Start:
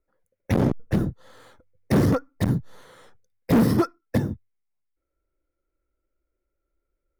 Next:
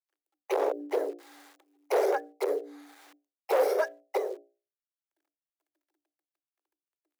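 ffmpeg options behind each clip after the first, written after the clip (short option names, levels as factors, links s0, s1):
-af "acrusher=bits=9:dc=4:mix=0:aa=0.000001,bandreject=f=60:t=h:w=6,bandreject=f=120:t=h:w=6,bandreject=f=180:t=h:w=6,bandreject=f=240:t=h:w=6,bandreject=f=300:t=h:w=6,bandreject=f=360:t=h:w=6,bandreject=f=420:t=h:w=6,bandreject=f=480:t=h:w=6,afreqshift=290,volume=0.501"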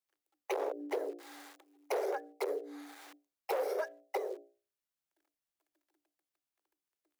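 -af "acompressor=threshold=0.0141:ratio=3,volume=1.26"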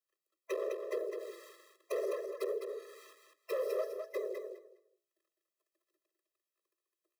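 -filter_complex "[0:a]aeval=exprs='clip(val(0),-1,0.0299)':c=same,asplit=2[s0][s1];[s1]aecho=0:1:206|412|618:0.501|0.0902|0.0162[s2];[s0][s2]amix=inputs=2:normalize=0,afftfilt=real='re*eq(mod(floor(b*sr/1024/340),2),1)':imag='im*eq(mod(floor(b*sr/1024/340),2),1)':win_size=1024:overlap=0.75"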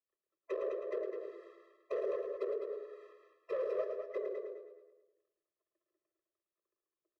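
-filter_complex "[0:a]adynamicsmooth=sensitivity=3:basefreq=1700,asplit=2[s0][s1];[s1]aecho=0:1:109|218|327|436|545|654:0.398|0.211|0.112|0.0593|0.0314|0.0166[s2];[s0][s2]amix=inputs=2:normalize=0,volume=0.891"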